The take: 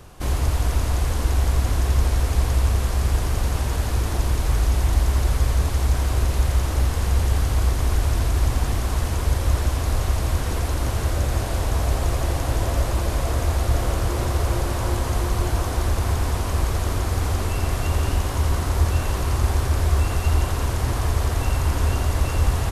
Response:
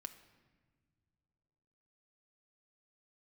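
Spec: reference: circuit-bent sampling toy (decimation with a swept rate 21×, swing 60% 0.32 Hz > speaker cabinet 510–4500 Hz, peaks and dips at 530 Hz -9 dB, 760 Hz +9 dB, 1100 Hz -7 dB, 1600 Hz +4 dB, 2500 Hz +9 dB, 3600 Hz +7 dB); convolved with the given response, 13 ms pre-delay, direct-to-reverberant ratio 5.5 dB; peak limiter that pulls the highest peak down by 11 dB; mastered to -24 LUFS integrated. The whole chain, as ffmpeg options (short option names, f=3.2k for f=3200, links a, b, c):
-filter_complex "[0:a]alimiter=limit=-18.5dB:level=0:latency=1,asplit=2[a][b];[1:a]atrim=start_sample=2205,adelay=13[c];[b][c]afir=irnorm=-1:irlink=0,volume=-1dB[d];[a][d]amix=inputs=2:normalize=0,acrusher=samples=21:mix=1:aa=0.000001:lfo=1:lforange=12.6:lforate=0.32,highpass=510,equalizer=f=530:t=q:w=4:g=-9,equalizer=f=760:t=q:w=4:g=9,equalizer=f=1.1k:t=q:w=4:g=-7,equalizer=f=1.6k:t=q:w=4:g=4,equalizer=f=2.5k:t=q:w=4:g=9,equalizer=f=3.6k:t=q:w=4:g=7,lowpass=f=4.5k:w=0.5412,lowpass=f=4.5k:w=1.3066,volume=9dB"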